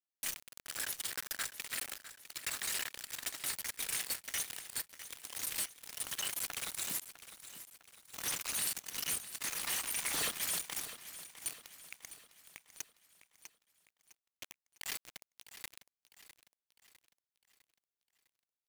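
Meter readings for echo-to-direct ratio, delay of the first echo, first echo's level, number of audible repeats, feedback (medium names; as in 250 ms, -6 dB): -12.5 dB, 654 ms, -13.5 dB, 4, 48%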